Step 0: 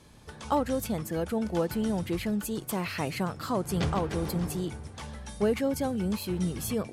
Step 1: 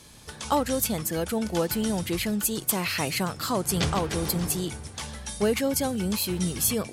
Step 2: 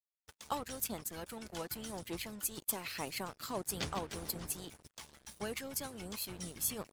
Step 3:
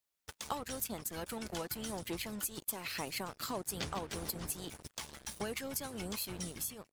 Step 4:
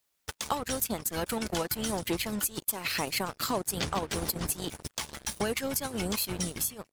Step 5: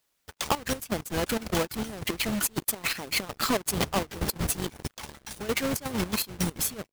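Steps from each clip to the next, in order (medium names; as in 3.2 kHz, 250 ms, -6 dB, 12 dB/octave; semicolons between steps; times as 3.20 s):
treble shelf 2.5 kHz +11.5 dB; trim +1.5 dB
wow and flutter 23 cents; crossover distortion -37 dBFS; harmonic-percussive split harmonic -10 dB; trim -8.5 dB
fade out at the end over 0.55 s; compression 3:1, threshold -47 dBFS, peak gain reduction 13.5 dB; trim +9 dB
transient shaper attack +1 dB, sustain -7 dB; in parallel at +1 dB: peak limiter -29 dBFS, peak gain reduction 9.5 dB; on the sum: trim +3 dB
square wave that keeps the level; trance gate "xxx.xx.x..x." 164 bpm -12 dB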